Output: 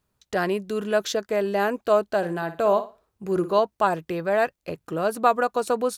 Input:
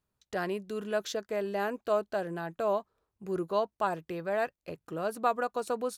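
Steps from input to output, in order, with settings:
0:02.17–0:03.59: flutter between parallel walls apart 9.7 metres, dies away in 0.29 s
level +8.5 dB

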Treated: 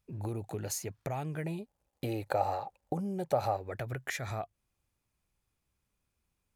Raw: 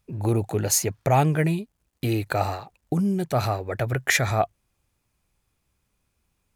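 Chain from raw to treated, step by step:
downward compressor 6 to 1, threshold −25 dBFS, peak gain reduction 10 dB
0:01.46–0:03.57: hollow resonant body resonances 560/790 Hz, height 14 dB, ringing for 25 ms
level −8.5 dB

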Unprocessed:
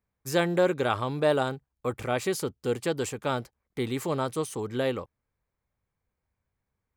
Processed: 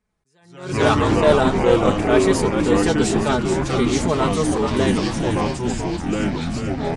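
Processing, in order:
comb filter 4.7 ms, depth 70%
delay with pitch and tempo change per echo 89 ms, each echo −4 semitones, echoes 3
downsampling to 22,050 Hz
on a send: echo with shifted repeats 433 ms, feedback 57%, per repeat −83 Hz, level −6 dB
on the sum: level that may rise only so fast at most 100 dB per second
level +6 dB

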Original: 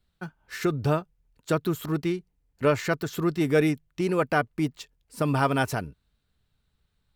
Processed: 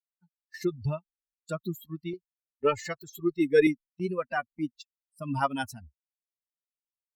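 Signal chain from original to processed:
spectral dynamics exaggerated over time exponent 3
noise gate −48 dBFS, range −11 dB
0:02.13–0:03.67: comb filter 2.4 ms, depth 99%
amplitude modulation by smooth noise, depth 55%
level +3 dB

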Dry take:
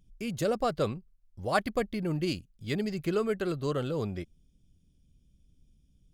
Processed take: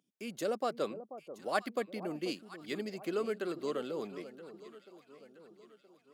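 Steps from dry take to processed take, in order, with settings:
high-pass filter 230 Hz 24 dB per octave
delay that swaps between a low-pass and a high-pass 486 ms, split 970 Hz, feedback 67%, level −12 dB
level −5 dB

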